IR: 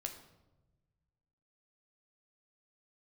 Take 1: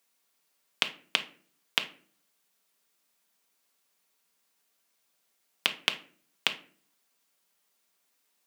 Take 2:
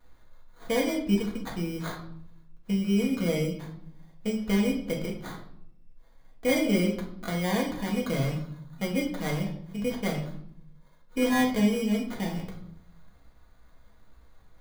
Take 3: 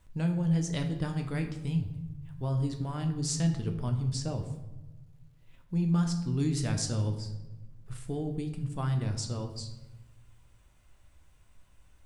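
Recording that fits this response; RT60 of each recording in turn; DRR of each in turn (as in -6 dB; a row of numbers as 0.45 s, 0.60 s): 3; 0.45 s, 0.65 s, 1.1 s; 5.0 dB, -2.5 dB, 4.0 dB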